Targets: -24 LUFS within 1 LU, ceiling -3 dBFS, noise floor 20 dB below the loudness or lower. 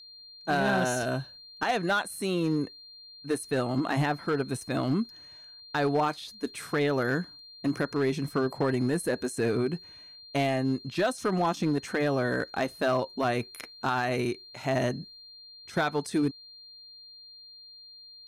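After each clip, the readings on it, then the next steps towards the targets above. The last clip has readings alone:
clipped 1.1%; flat tops at -19.5 dBFS; steady tone 4200 Hz; tone level -47 dBFS; loudness -29.5 LUFS; peak -19.5 dBFS; loudness target -24.0 LUFS
-> clip repair -19.5 dBFS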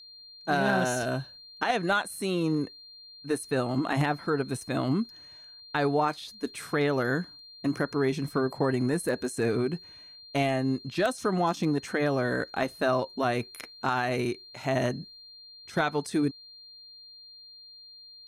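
clipped 0.0%; steady tone 4200 Hz; tone level -47 dBFS
-> notch 4200 Hz, Q 30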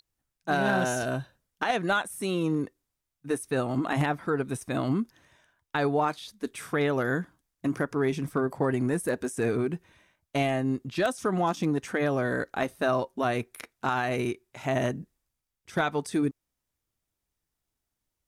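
steady tone none; loudness -29.0 LUFS; peak -10.5 dBFS; loudness target -24.0 LUFS
-> gain +5 dB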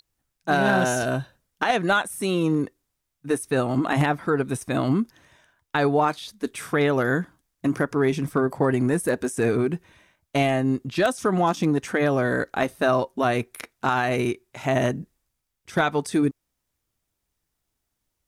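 loudness -24.0 LUFS; peak -5.5 dBFS; noise floor -80 dBFS

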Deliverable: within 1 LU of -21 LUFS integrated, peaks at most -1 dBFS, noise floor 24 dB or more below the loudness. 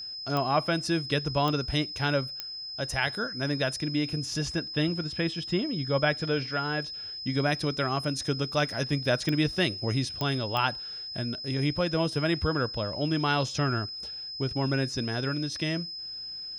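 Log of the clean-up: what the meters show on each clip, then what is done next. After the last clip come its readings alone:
clicks 6; steady tone 5100 Hz; tone level -36 dBFS; loudness -29.0 LUFS; peak -11.5 dBFS; loudness target -21.0 LUFS
-> de-click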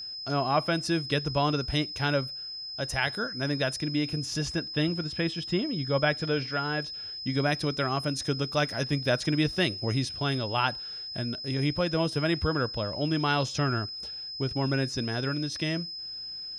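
clicks 0; steady tone 5100 Hz; tone level -36 dBFS
-> notch 5100 Hz, Q 30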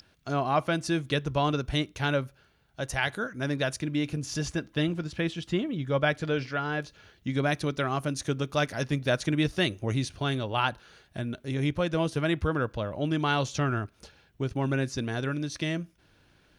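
steady tone none; loudness -29.5 LUFS; peak -11.5 dBFS; loudness target -21.0 LUFS
-> gain +8.5 dB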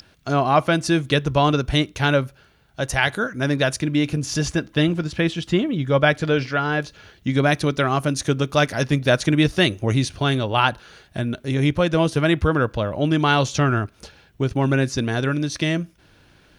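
loudness -21.0 LUFS; peak -3.0 dBFS; noise floor -55 dBFS

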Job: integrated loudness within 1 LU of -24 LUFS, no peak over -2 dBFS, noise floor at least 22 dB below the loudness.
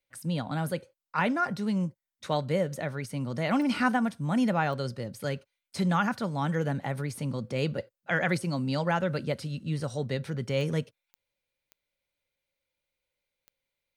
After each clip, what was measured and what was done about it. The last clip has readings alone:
clicks 6; loudness -30.0 LUFS; peak -13.0 dBFS; loudness target -24.0 LUFS
-> de-click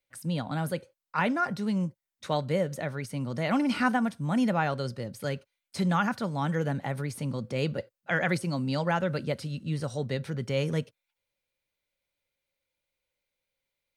clicks 0; loudness -30.0 LUFS; peak -13.0 dBFS; loudness target -24.0 LUFS
-> gain +6 dB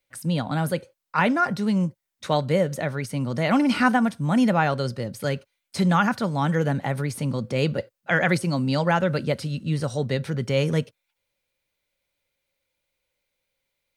loudness -24.0 LUFS; peak -7.0 dBFS; noise floor -80 dBFS

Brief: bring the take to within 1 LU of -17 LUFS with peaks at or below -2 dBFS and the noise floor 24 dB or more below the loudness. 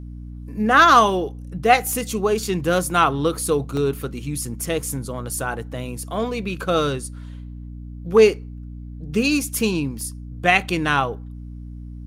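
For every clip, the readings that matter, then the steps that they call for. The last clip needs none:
dropouts 2; longest dropout 1.4 ms; hum 60 Hz; harmonics up to 300 Hz; hum level -32 dBFS; loudness -20.5 LUFS; peak -1.5 dBFS; loudness target -17.0 LUFS
-> interpolate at 3.77/10.01, 1.4 ms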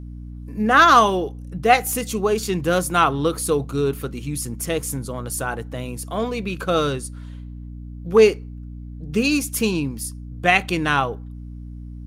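dropouts 0; hum 60 Hz; harmonics up to 300 Hz; hum level -32 dBFS
-> de-hum 60 Hz, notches 5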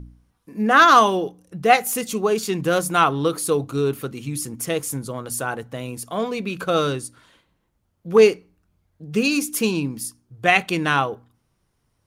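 hum none; loudness -20.5 LUFS; peak -1.5 dBFS; loudness target -17.0 LUFS
-> gain +3.5 dB; limiter -2 dBFS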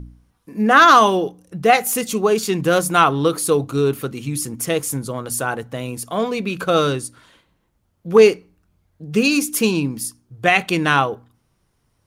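loudness -17.5 LUFS; peak -2.0 dBFS; noise floor -67 dBFS

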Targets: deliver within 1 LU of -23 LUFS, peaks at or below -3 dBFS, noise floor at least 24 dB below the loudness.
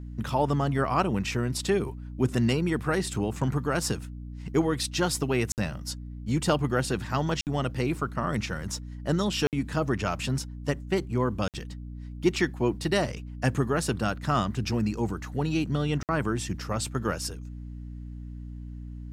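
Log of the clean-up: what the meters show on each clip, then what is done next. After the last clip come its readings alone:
dropouts 5; longest dropout 58 ms; hum 60 Hz; harmonics up to 300 Hz; hum level -36 dBFS; loudness -28.5 LUFS; peak -10.5 dBFS; loudness target -23.0 LUFS
-> interpolate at 5.52/7.41/9.47/11.48/16.03, 58 ms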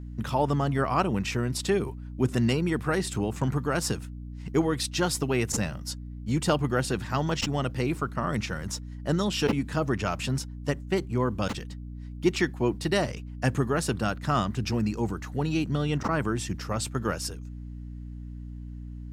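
dropouts 0; hum 60 Hz; harmonics up to 300 Hz; hum level -36 dBFS
-> de-hum 60 Hz, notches 5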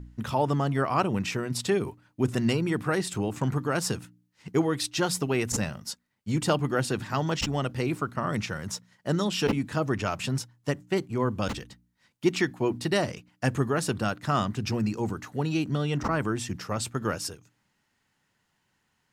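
hum none; loudness -28.5 LUFS; peak -10.0 dBFS; loudness target -23.0 LUFS
-> gain +5.5 dB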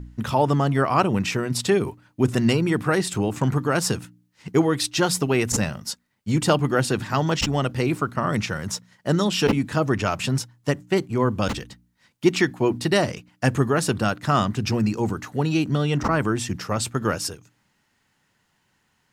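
loudness -23.0 LUFS; peak -4.5 dBFS; noise floor -69 dBFS

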